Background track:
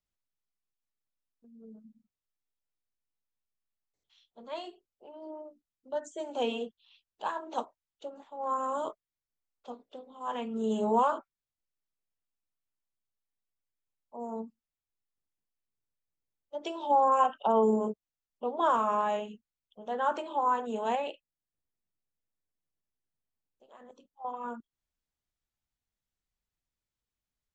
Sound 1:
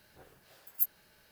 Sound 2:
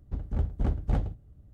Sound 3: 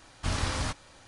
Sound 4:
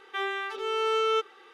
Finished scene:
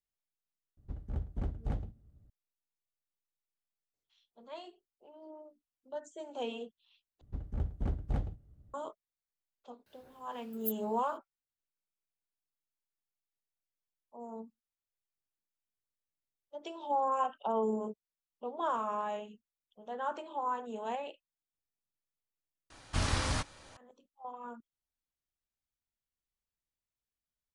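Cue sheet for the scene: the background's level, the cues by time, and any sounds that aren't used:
background track -7 dB
0.77 add 2 -8.5 dB
7.21 replace with 2 -6.5 dB
9.86 add 1 -7.5 dB
22.7 add 3 -1.5 dB
not used: 4

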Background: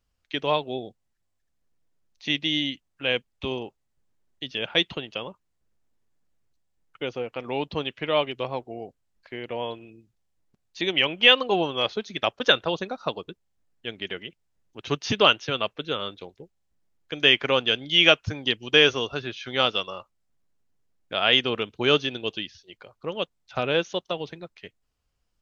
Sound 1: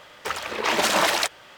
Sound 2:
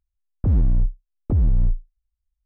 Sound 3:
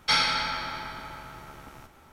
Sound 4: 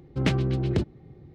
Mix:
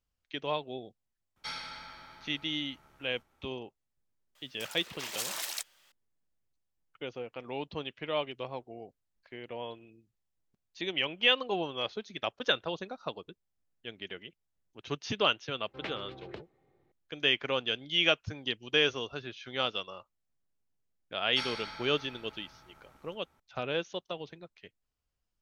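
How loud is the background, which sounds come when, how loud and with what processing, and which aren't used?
background -9 dB
1.36 add 3 -17 dB
4.35 add 1 -8 dB + pre-emphasis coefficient 0.9
15.58 add 4 -8.5 dB + three-band isolator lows -20 dB, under 450 Hz, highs -22 dB, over 4200 Hz
21.28 add 3 -15 dB
not used: 2

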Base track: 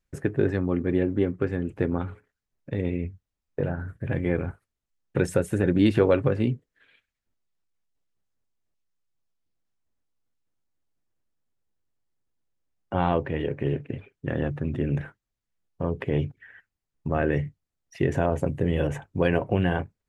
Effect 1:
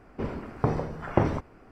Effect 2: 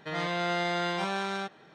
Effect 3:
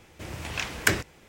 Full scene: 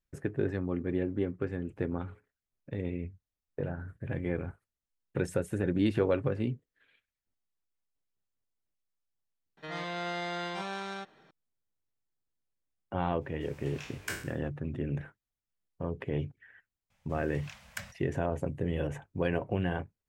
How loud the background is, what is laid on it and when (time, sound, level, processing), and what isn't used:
base track -7.5 dB
9.57 add 2 -6 dB
13.21 add 3 -17.5 dB + spectral trails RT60 0.49 s
16.9 add 3 -17.5 dB + elliptic band-stop 220–540 Hz
not used: 1

